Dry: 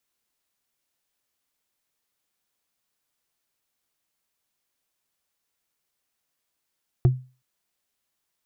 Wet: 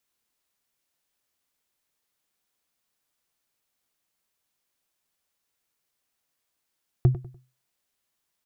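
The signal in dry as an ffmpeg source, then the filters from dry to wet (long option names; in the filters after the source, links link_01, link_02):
-f lavfi -i "aevalsrc='0.299*pow(10,-3*t/0.33)*sin(2*PI*128*t)+0.106*pow(10,-3*t/0.098)*sin(2*PI*352.9*t)+0.0376*pow(10,-3*t/0.044)*sin(2*PI*691.7*t)+0.0133*pow(10,-3*t/0.024)*sin(2*PI*1143.4*t)+0.00473*pow(10,-3*t/0.015)*sin(2*PI*1707.5*t)':duration=0.37:sample_rate=44100"
-filter_complex "[0:a]asplit=2[link_01][link_02];[link_02]adelay=98,lowpass=frequency=2000:poles=1,volume=-12dB,asplit=2[link_03][link_04];[link_04]adelay=98,lowpass=frequency=2000:poles=1,volume=0.34,asplit=2[link_05][link_06];[link_06]adelay=98,lowpass=frequency=2000:poles=1,volume=0.34[link_07];[link_01][link_03][link_05][link_07]amix=inputs=4:normalize=0"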